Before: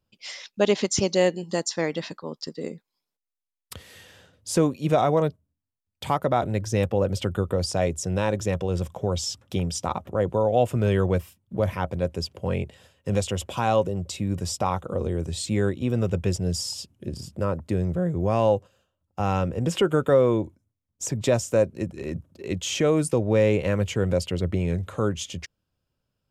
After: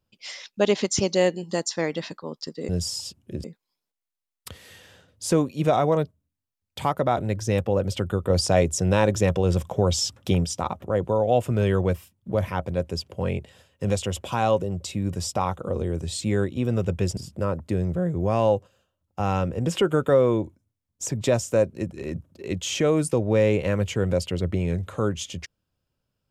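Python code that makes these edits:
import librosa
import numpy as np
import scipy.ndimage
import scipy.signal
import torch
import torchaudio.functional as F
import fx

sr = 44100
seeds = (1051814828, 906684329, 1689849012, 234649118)

y = fx.edit(x, sr, fx.clip_gain(start_s=7.55, length_s=2.15, db=4.5),
    fx.move(start_s=16.42, length_s=0.75, to_s=2.69), tone=tone)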